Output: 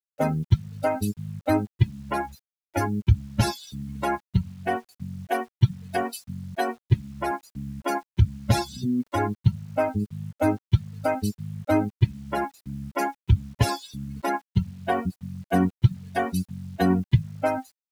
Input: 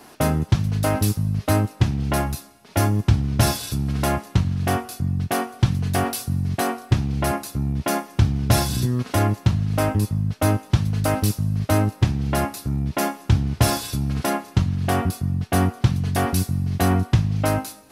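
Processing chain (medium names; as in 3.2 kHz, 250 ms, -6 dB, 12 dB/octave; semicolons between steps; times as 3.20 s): expander on every frequency bin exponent 3; low-pass 3.5 kHz 6 dB/octave; band-stop 1.2 kHz, Q 6.3; in parallel at +1.5 dB: compression 8:1, threshold -40 dBFS, peak gain reduction 24 dB; on the sum: word length cut 10-bit, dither none; trim +3 dB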